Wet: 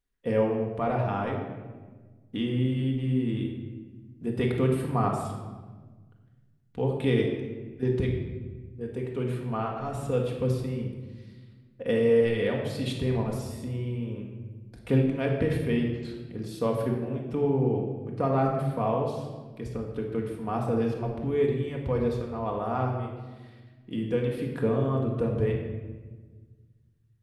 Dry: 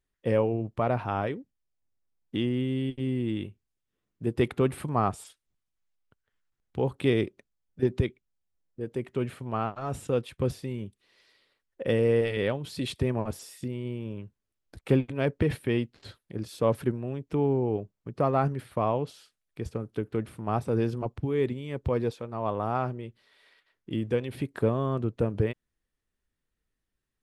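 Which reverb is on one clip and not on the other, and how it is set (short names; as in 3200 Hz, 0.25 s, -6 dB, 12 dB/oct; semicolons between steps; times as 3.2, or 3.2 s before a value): shoebox room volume 1200 m³, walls mixed, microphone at 1.8 m; gain -3.5 dB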